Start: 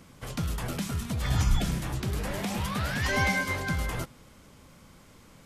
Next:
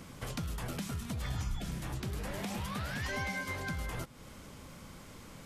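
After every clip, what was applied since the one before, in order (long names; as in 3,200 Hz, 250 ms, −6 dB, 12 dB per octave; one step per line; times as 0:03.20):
downward compressor 3 to 1, threshold −42 dBFS, peak gain reduction 17 dB
level +3.5 dB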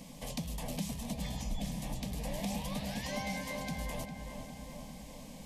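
phaser with its sweep stopped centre 370 Hz, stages 6
feedback echo with a low-pass in the loop 404 ms, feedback 66%, low-pass 2,500 Hz, level −7 dB
level +2.5 dB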